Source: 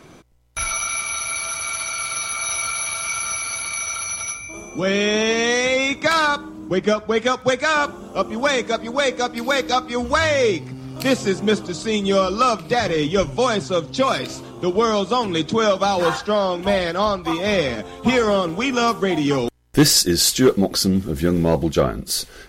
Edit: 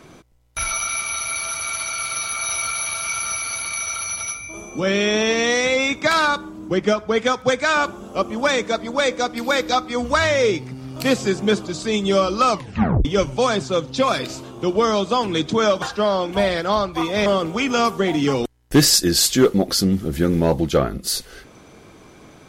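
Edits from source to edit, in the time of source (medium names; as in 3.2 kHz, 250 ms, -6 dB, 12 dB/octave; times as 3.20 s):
12.51 s: tape stop 0.54 s
15.82–16.12 s: delete
17.56–18.29 s: delete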